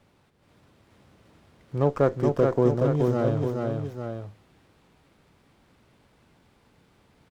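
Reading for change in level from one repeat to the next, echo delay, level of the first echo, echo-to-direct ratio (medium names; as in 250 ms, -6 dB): -4.5 dB, 425 ms, -3.5 dB, -2.0 dB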